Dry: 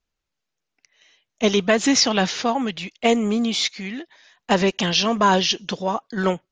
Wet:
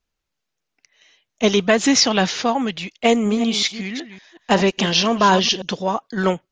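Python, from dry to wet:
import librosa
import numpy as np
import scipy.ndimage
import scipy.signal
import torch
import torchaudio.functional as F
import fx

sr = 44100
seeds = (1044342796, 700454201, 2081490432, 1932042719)

y = fx.reverse_delay(x, sr, ms=186, wet_db=-12.0, at=(3.07, 5.62))
y = y * 10.0 ** (2.0 / 20.0)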